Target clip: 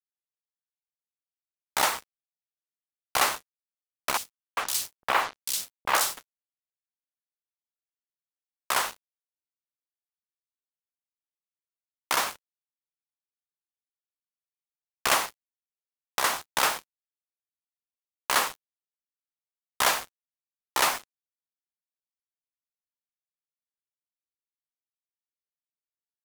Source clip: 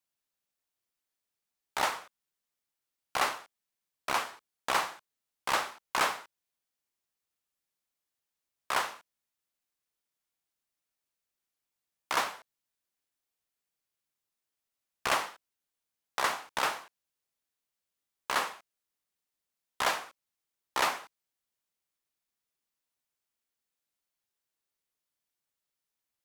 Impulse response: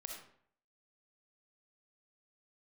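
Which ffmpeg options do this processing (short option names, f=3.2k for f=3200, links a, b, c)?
-filter_complex "[0:a]crystalizer=i=1.5:c=0,agate=range=-33dB:threshold=-48dB:ratio=3:detection=peak,asettb=1/sr,asplit=3[a][b][c];[a]atrim=end=4.174[d];[b]atrim=start=4.17:end=6.17,asetpts=PTS-STARTPTS,afade=t=in:d=0.004:c=qsin,afade=t=out:st=1.996:d=0.004:c=qsin,acrossover=split=260|3500[e][f][g];[e]adelay=330[h];[f]adelay=400[i];[h][i][g]amix=inputs=3:normalize=0,atrim=end_sample=88200[j];[c]atrim=start=6.166[k];[d][j]acrossfade=d=0.004:c1=hsin:c2=qsin[l];[l][k]acrossfade=d=0.004:c1=qsin:c2=hsin,acrusher=bits=5:mix=0:aa=0.5,alimiter=limit=-13dB:level=0:latency=1:release=213,volume=4.5dB"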